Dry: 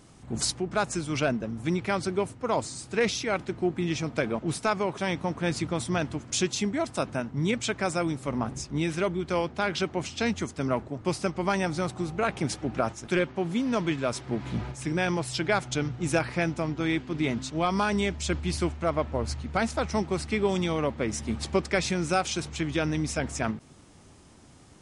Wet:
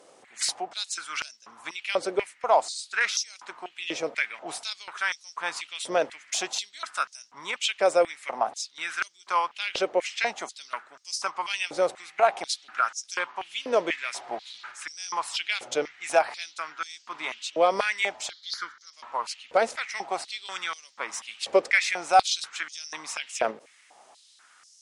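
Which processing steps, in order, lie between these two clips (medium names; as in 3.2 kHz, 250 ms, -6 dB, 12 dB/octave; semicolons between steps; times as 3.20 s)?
18.30–18.93 s: static phaser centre 2.6 kHz, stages 6; Chebyshev shaper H 7 -43 dB, 8 -39 dB, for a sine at -11 dBFS; step-sequenced high-pass 4.1 Hz 520–5500 Hz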